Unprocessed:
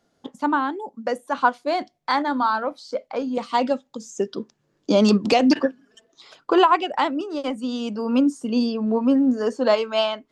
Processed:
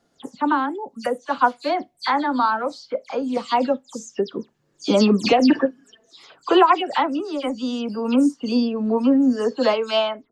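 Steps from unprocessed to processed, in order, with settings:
every frequency bin delayed by itself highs early, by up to 108 ms
level +1.5 dB

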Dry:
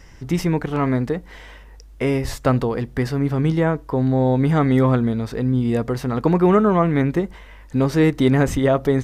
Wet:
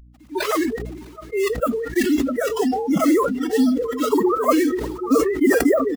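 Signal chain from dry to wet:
three sine waves on the formant tracks
bit reduction 5 bits
reversed playback
upward compression, threshold −16 dBFS
reversed playback
single-tap delay 1,174 ms −15 dB
amplitude tremolo 1.3 Hz, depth 77%
phase-vocoder stretch with locked phases 0.66×
mains hum 60 Hz, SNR 15 dB
on a send: echo with a time of its own for lows and highs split 430 Hz, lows 343 ms, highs 655 ms, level −14.5 dB
on the sum: noise reduction from a noise print of the clip's start 21 dB
level that may fall only so fast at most 45 dB per second
level +3 dB

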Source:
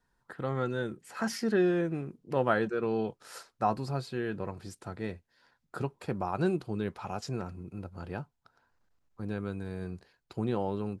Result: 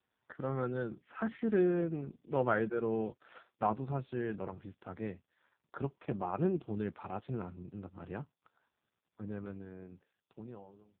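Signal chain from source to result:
fade-out on the ending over 2.24 s
level −2.5 dB
AMR narrowband 5.15 kbit/s 8,000 Hz

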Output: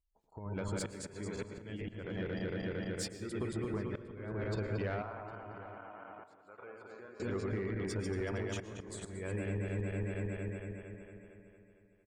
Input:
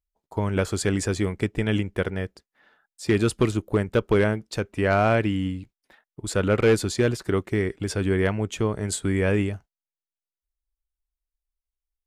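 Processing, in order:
feedback delay that plays each chunk backwards 114 ms, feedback 77%, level −4 dB
gate on every frequency bin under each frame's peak −30 dB strong
downward compressor 20 to 1, threshold −33 dBFS, peak gain reduction 21 dB
volume swells 329 ms
0:05.02–0:07.20: envelope filter 450–1,100 Hz, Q 3, down, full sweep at −14.5 dBFS
soft clipping −30 dBFS, distortion −20 dB
slap from a distant wall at 130 metres, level −15 dB
convolution reverb RT60 0.65 s, pre-delay 106 ms, DRR 15 dB
level +1.5 dB

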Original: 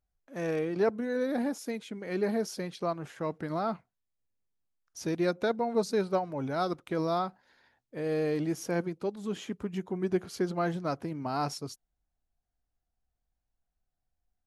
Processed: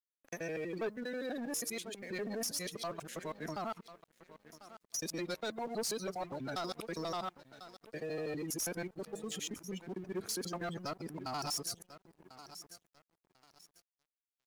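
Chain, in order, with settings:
reversed piece by piece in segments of 81 ms
in parallel at +1 dB: output level in coarse steps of 12 dB
on the sum: first-order pre-emphasis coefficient 0.9
on a send: repeating echo 1,044 ms, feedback 41%, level −16 dB
on the sum: gate on every frequency bin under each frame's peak −20 dB strong
leveller curve on the samples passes 3
bit-depth reduction 12 bits, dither none
level −4.5 dB

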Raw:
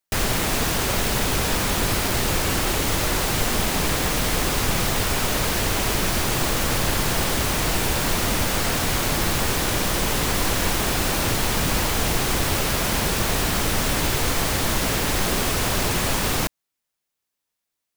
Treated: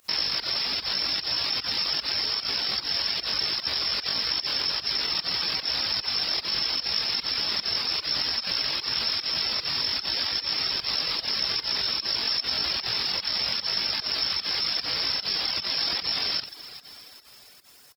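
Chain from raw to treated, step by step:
voice inversion scrambler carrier 3,000 Hz
background noise white −49 dBFS
pitch shifter +10 semitones
in parallel at −2 dB: compressor whose output falls as the input rises −25 dBFS
on the sum: high-pass filter 44 Hz
on a send at −12 dB: convolution reverb RT60 4.4 s, pre-delay 103 ms
on the sum: fake sidechain pumping 150 BPM, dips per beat 1, −18 dB, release 109 ms
single-tap delay 91 ms −8 dB
reverb reduction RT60 0.58 s
level −8 dB

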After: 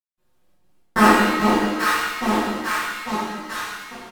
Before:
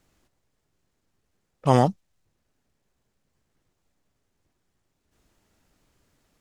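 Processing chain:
gliding playback speed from 183% → 128%
on a send: delay that swaps between a low-pass and a high-pass 423 ms, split 1,100 Hz, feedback 72%, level −5.5 dB
on the sum: gate pattern "..xxxx.xx" 172 BPM −60 dB
comb filter 5.6 ms, depth 65%
in parallel at −8.5 dB: fuzz pedal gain 42 dB, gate −38 dBFS
on the sum: reverb with rising layers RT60 1.1 s, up +7 semitones, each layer −8 dB, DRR −11.5 dB
level −7.5 dB

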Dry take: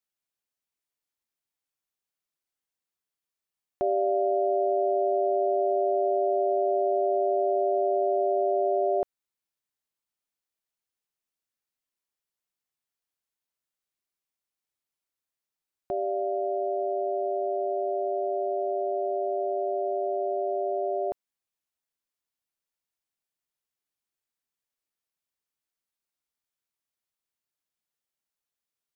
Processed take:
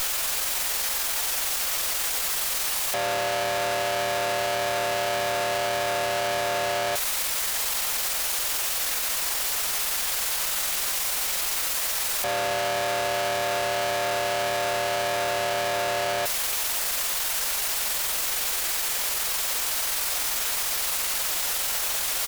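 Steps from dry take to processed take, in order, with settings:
sign of each sample alone
inverse Chebyshev high-pass filter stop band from 240 Hz, stop band 40 dB
tempo change 1.3×
harmonic generator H 6 −16 dB, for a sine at −20.5 dBFS
level +6 dB

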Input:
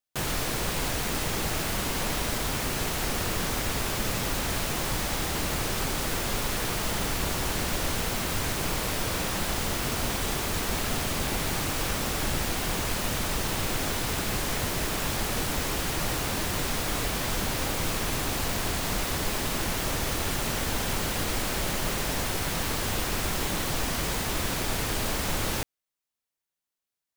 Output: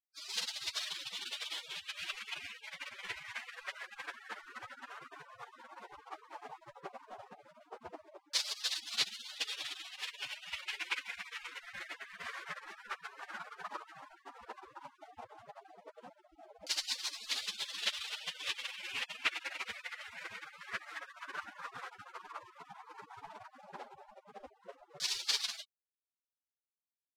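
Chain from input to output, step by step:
0:19.86–0:21.03: mains-hum notches 50/100/150/200/250/300/350 Hz
gate on every frequency bin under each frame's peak −30 dB weak
auto-filter low-pass saw down 0.12 Hz 570–4,700 Hz
level +11.5 dB

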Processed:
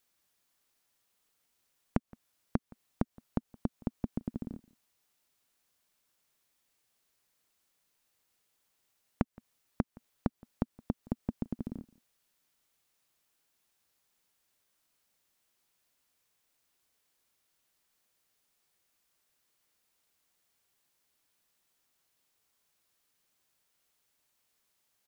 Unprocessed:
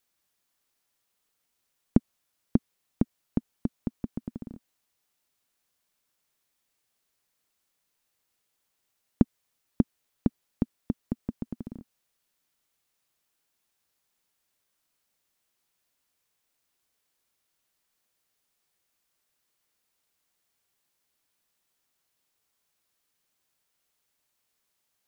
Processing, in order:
downward compressor 6 to 1, threshold −28 dBFS, peak gain reduction 14 dB
slap from a distant wall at 29 metres, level −24 dB
level +1 dB

